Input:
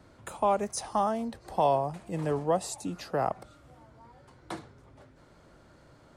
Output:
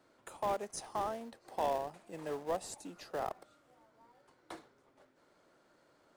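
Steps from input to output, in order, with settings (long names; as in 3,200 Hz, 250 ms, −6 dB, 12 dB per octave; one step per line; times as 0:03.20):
high-pass filter 340 Hz 12 dB per octave
in parallel at −11.5 dB: sample-rate reduction 1,200 Hz, jitter 20%
on the sum: level −8.5 dB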